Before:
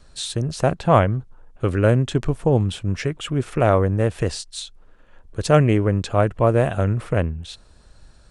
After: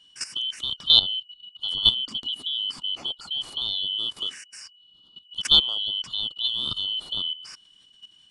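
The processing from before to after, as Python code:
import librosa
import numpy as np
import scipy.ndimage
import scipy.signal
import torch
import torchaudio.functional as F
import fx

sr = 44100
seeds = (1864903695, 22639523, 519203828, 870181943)

y = fx.band_shuffle(x, sr, order='2413')
y = fx.level_steps(y, sr, step_db=14)
y = fx.peak_eq(y, sr, hz=240.0, db=13.0, octaves=0.95, at=(1.96, 2.87))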